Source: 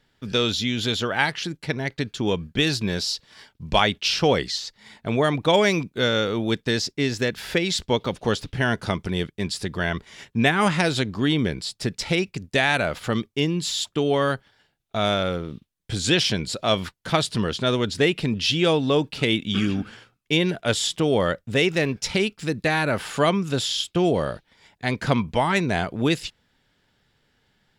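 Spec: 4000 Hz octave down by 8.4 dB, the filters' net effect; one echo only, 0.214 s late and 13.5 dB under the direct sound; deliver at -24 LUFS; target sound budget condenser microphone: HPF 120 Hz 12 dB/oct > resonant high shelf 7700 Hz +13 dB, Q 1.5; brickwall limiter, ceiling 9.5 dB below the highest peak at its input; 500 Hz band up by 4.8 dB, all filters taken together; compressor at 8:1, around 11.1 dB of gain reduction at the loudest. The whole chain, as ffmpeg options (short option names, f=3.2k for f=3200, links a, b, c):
-af "equalizer=f=500:t=o:g=6,equalizer=f=4k:t=o:g=-8.5,acompressor=threshold=-23dB:ratio=8,alimiter=limit=-21dB:level=0:latency=1,highpass=120,highshelf=f=7.7k:t=q:w=1.5:g=13,aecho=1:1:214:0.211,volume=7dB"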